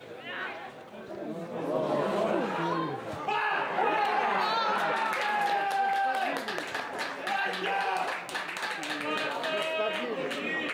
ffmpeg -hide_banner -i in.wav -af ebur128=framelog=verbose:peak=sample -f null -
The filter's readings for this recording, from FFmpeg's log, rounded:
Integrated loudness:
  I:         -29.9 LUFS
  Threshold: -40.1 LUFS
Loudness range:
  LRA:         3.7 LU
  Threshold: -49.5 LUFS
  LRA low:   -31.5 LUFS
  LRA high:  -27.8 LUFS
Sample peak:
  Peak:      -14.9 dBFS